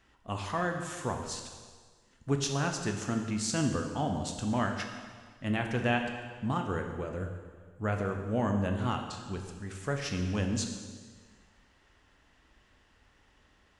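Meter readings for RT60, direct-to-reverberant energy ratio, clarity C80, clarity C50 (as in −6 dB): 1.6 s, 3.5 dB, 7.0 dB, 5.5 dB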